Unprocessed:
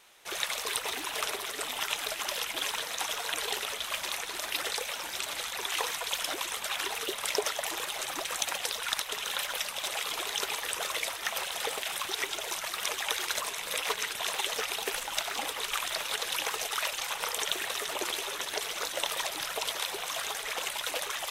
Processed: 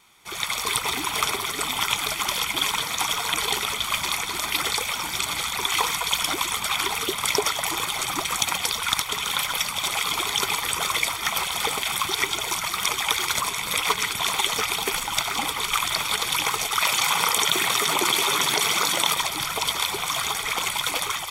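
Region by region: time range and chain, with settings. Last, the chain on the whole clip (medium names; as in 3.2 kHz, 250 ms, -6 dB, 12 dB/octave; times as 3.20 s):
16.81–19.14 s: high-pass 120 Hz 24 dB/octave + level flattener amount 70%
whole clip: level rider gain up to 7 dB; peaking EQ 120 Hz +9 dB 2.2 oct; comb 0.9 ms, depth 60%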